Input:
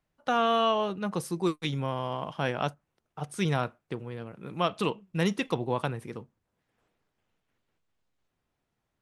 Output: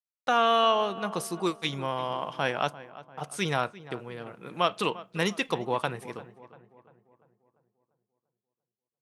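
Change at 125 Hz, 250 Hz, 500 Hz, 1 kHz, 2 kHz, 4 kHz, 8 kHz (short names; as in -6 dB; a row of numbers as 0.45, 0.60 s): -5.0, -3.0, +1.0, +3.0, +3.5, +4.0, +4.0 dB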